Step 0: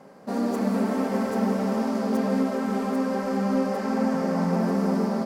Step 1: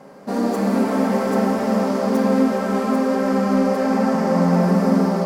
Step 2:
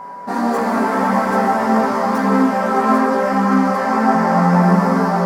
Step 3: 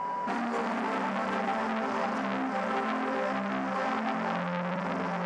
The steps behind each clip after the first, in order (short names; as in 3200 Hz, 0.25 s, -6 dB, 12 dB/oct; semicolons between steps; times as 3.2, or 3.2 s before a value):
plate-style reverb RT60 2.2 s, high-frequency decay 0.55×, DRR 3 dB; gain +5 dB
band shelf 1200 Hz +8 dB; chorus voices 2, 0.85 Hz, delay 17 ms, depth 1.1 ms; whine 980 Hz -34 dBFS; gain +4 dB
LPF 8100 Hz 24 dB/oct; compressor 4:1, threshold -26 dBFS, peak gain reduction 14.5 dB; core saturation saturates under 1700 Hz